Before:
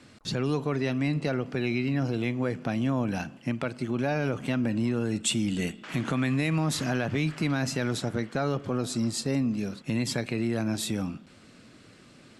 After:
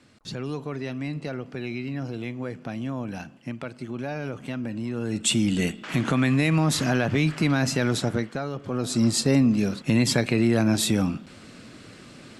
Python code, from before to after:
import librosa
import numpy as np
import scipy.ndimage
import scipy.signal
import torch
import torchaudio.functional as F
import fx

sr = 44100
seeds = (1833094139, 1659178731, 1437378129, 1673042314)

y = fx.gain(x, sr, db=fx.line((4.85, -4.0), (5.34, 5.0), (8.13, 5.0), (8.5, -4.5), (9.06, 7.5)))